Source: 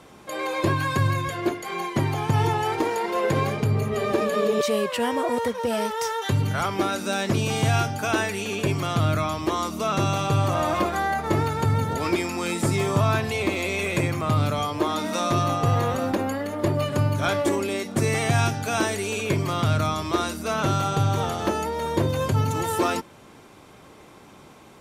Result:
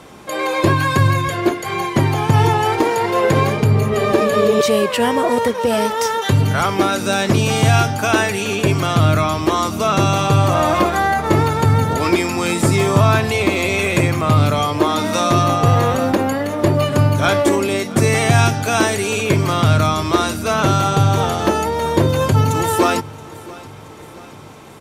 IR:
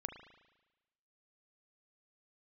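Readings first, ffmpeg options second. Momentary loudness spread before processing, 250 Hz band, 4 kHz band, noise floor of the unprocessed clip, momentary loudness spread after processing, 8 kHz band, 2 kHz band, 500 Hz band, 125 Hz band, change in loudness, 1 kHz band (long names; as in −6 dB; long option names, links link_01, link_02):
4 LU, +8.0 dB, +8.0 dB, −48 dBFS, 4 LU, +8.0 dB, +8.0 dB, +8.0 dB, +8.0 dB, +8.0 dB, +8.0 dB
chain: -af "aecho=1:1:675|1350|2025|2700|3375:0.0891|0.0517|0.03|0.0174|0.0101,volume=8dB"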